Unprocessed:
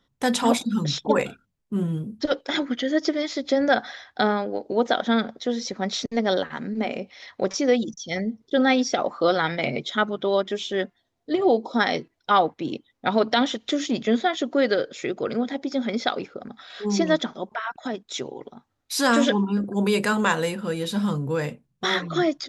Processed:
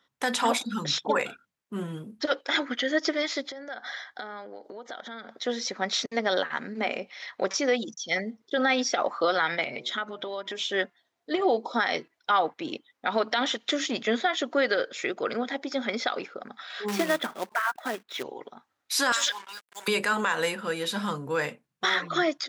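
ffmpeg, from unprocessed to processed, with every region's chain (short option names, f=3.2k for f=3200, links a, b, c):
-filter_complex "[0:a]asettb=1/sr,asplit=3[a][b][c];[a]atrim=end=3.484[d];[b]atrim=start=3.48:end=5.31,asetpts=PTS-STARTPTS,afade=t=in:d=0.004:c=qsin,afade=t=out:st=1.826:d=0.004:c=qsin,asuperstop=centerf=2600:order=4:qfactor=5.9,acompressor=threshold=-34dB:ratio=12:attack=3.2:release=140:knee=1:detection=peak[e];[c]atrim=start=5.306[f];[d][e]acrossfade=d=0.004:c1=hsin:c2=qsin[g];[g][f]acrossfade=d=0.004:c1=qsin:c2=hsin,asettb=1/sr,asplit=3[h][i][j];[h]atrim=end=9.634[k];[i]atrim=start=9.63:end=10.6,asetpts=PTS-STARTPTS,afade=t=in:d=0.004:c=qsin,afade=t=out:st=0.966:d=0.004:c=qsin,acompressor=threshold=-27dB:ratio=16:attack=3.2:release=140:knee=1:detection=peak,bandreject=f=122.4:t=h:w=4,bandreject=f=244.8:t=h:w=4,bandreject=f=367.2:t=h:w=4,bandreject=f=489.6:t=h:w=4,bandreject=f=612:t=h:w=4,bandreject=f=734.4:t=h:w=4,bandreject=f=856.8:t=h:w=4,bandreject=f=979.2:t=h:w=4[l];[j]atrim=start=10.596[m];[k][l]acrossfade=d=0.004:c1=hsin:c2=qsin[n];[n][m]acrossfade=d=0.004:c1=qsin:c2=hsin,asettb=1/sr,asplit=3[o][p][q];[o]atrim=end=16.884[r];[p]atrim=start=16.88:end=18.23,asetpts=PTS-STARTPTS,afade=t=in:d=0.004:c=qsin,afade=t=out:st=1.346:d=0.004:c=qsin,lowpass=2.9k,acrusher=bits=3:mode=log:mix=0:aa=0.000001[s];[q]atrim=start=18.226[t];[r][s]acrossfade=d=0.004:c1=hsin:c2=qsin[u];[u][t]acrossfade=d=0.004:c1=qsin:c2=hsin,asettb=1/sr,asplit=3[v][w][x];[v]atrim=end=19.124[y];[w]atrim=start=19.12:end=19.88,asetpts=PTS-STARTPTS,afade=t=in:d=0.004:c=qsin,afade=t=out:st=0.756:d=0.004:c=qsin,highpass=1.4k,highshelf=f=3.4k:t=q:w=1.5:g=7,acrusher=bits=6:mix=0:aa=0.5[z];[x]atrim=start=19.876[aa];[y][z]acrossfade=d=0.004:c1=hsin:c2=qsin[ab];[ab][aa]acrossfade=d=0.004:c1=qsin:c2=hsin,highpass=f=540:p=1,equalizer=f=1.6k:t=o:w=1.7:g=5,alimiter=limit=-14dB:level=0:latency=1:release=83"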